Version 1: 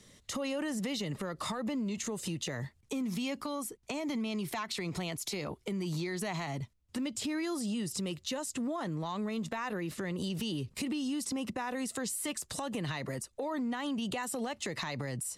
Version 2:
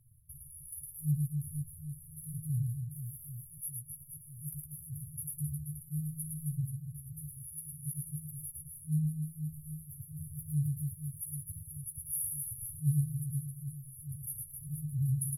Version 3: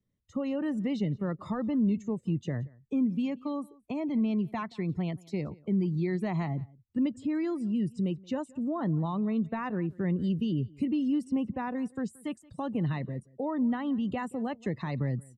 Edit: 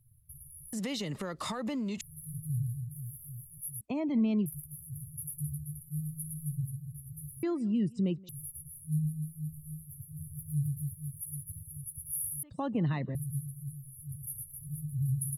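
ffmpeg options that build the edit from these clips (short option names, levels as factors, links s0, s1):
-filter_complex "[2:a]asplit=3[s0][s1][s2];[1:a]asplit=5[s3][s4][s5][s6][s7];[s3]atrim=end=0.732[s8];[0:a]atrim=start=0.728:end=2.012[s9];[s4]atrim=start=2.008:end=3.812[s10];[s0]atrim=start=3.808:end=4.462[s11];[s5]atrim=start=4.458:end=7.432[s12];[s1]atrim=start=7.428:end=8.292[s13];[s6]atrim=start=8.288:end=12.432[s14];[s2]atrim=start=12.428:end=13.152[s15];[s7]atrim=start=13.148[s16];[s8][s9]acrossfade=d=0.004:c1=hsin:c2=hsin[s17];[s17][s10]acrossfade=d=0.004:c1=hsin:c2=hsin[s18];[s18][s11]acrossfade=d=0.004:c1=hsin:c2=hsin[s19];[s19][s12]acrossfade=d=0.004:c1=hsin:c2=hsin[s20];[s20][s13]acrossfade=d=0.004:c1=hsin:c2=hsin[s21];[s21][s14]acrossfade=d=0.004:c1=hsin:c2=hsin[s22];[s22][s15]acrossfade=d=0.004:c1=hsin:c2=hsin[s23];[s23][s16]acrossfade=d=0.004:c1=hsin:c2=hsin"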